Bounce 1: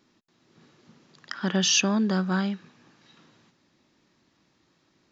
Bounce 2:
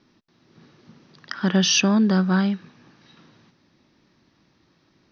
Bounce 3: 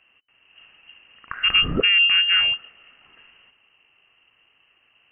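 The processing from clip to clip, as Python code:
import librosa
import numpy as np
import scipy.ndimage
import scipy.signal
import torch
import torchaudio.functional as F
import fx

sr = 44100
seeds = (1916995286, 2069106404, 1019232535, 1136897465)

y1 = scipy.signal.sosfilt(scipy.signal.cheby1(6, 1.0, 6000.0, 'lowpass', fs=sr, output='sos'), x)
y1 = fx.low_shelf(y1, sr, hz=250.0, db=6.0)
y1 = y1 * 10.0 ** (3.5 / 20.0)
y2 = fx.freq_invert(y1, sr, carrier_hz=3000)
y2 = y2 * 10.0 ** (1.0 / 20.0)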